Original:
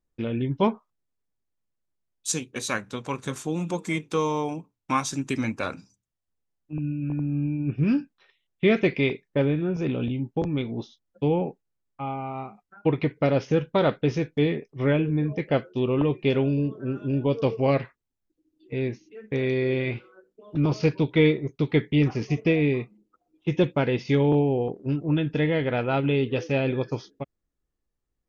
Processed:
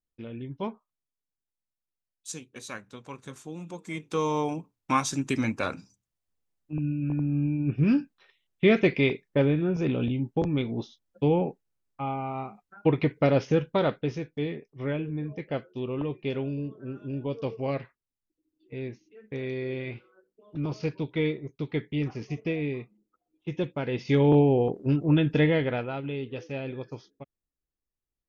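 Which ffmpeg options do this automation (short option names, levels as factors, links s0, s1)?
-af "volume=3.16,afade=t=in:st=3.84:d=0.56:silence=0.281838,afade=t=out:st=13.4:d=0.82:silence=0.398107,afade=t=in:st=23.82:d=0.56:silence=0.316228,afade=t=out:st=25.42:d=0.52:silence=0.251189"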